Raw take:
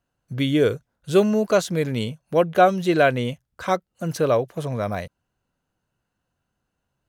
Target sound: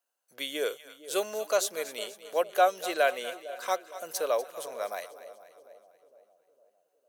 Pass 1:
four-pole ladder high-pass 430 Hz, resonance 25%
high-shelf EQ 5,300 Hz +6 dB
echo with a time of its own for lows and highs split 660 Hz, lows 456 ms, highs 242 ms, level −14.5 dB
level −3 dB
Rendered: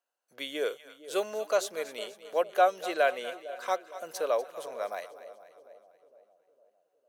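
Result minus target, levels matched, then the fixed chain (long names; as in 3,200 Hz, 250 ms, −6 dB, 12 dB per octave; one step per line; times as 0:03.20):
8,000 Hz band −6.0 dB
four-pole ladder high-pass 430 Hz, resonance 25%
high-shelf EQ 5,300 Hz +16.5 dB
echo with a time of its own for lows and highs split 660 Hz, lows 456 ms, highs 242 ms, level −14.5 dB
level −3 dB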